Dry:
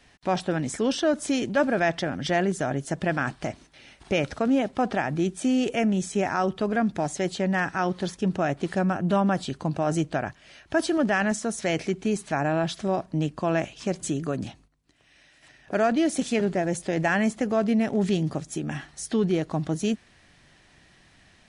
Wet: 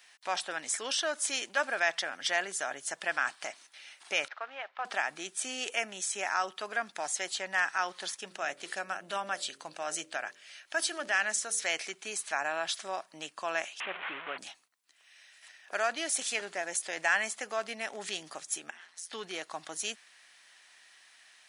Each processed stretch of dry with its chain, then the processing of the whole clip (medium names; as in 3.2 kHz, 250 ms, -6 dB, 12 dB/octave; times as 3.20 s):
4.28–4.85 s: CVSD coder 64 kbps + band-pass 770–2700 Hz + distance through air 160 m
8.25–11.63 s: peaking EQ 1 kHz -4.5 dB 0.84 oct + de-hum 45.43 Hz, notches 13
13.80–14.38 s: one-bit delta coder 16 kbps, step -26.5 dBFS + distance through air 75 m
18.70–19.13 s: treble shelf 8.6 kHz -11 dB + compression 5:1, threshold -39 dBFS + ring modulator 86 Hz
whole clip: high-pass 1.1 kHz 12 dB/octave; treble shelf 9.4 kHz +10.5 dB